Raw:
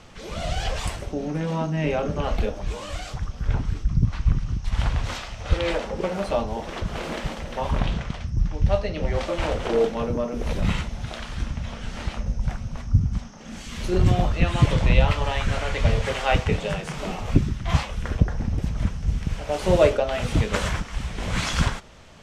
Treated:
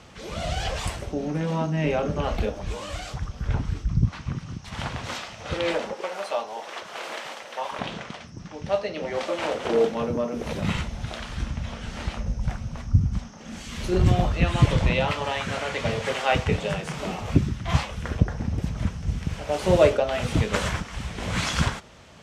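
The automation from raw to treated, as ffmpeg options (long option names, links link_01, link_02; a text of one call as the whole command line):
ffmpeg -i in.wav -af "asetnsamples=nb_out_samples=441:pad=0,asendcmd='4.08 highpass f 150;5.93 highpass f 640;7.79 highpass f 260;9.65 highpass f 110;10.75 highpass f 40;14.9 highpass f 160;16.36 highpass f 64',highpass=47" out.wav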